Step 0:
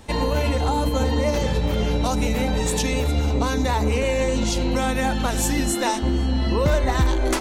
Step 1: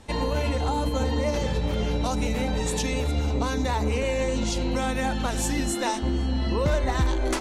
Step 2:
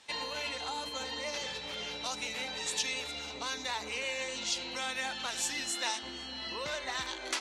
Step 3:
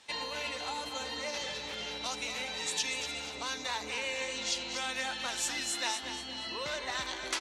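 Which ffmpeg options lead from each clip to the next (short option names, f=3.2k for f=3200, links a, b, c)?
-af "lowpass=11k,volume=-4dB"
-af "bandpass=f=3.8k:t=q:w=0.81:csg=0,volume=1dB"
-af "aecho=1:1:238|476|714|952:0.355|0.142|0.0568|0.0227"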